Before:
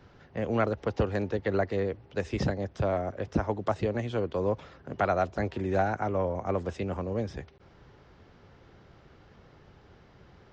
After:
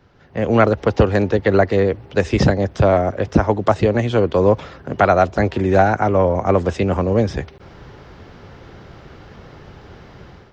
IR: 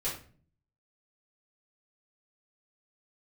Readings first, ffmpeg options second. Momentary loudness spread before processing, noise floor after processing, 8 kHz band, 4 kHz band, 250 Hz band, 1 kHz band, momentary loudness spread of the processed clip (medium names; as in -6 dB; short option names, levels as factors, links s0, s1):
6 LU, -44 dBFS, no reading, +13.5 dB, +13.5 dB, +13.0 dB, 6 LU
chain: -af "dynaudnorm=f=140:g=5:m=5.01,volume=1.12"